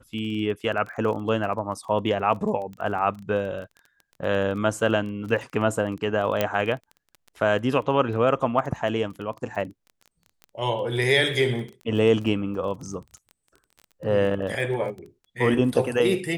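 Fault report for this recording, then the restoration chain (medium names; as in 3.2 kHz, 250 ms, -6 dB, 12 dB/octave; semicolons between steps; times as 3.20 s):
crackle 21 per s -33 dBFS
6.41 s: pop -8 dBFS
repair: de-click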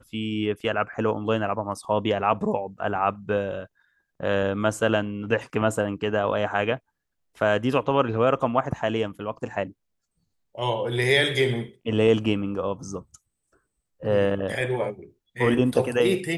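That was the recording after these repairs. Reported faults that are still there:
nothing left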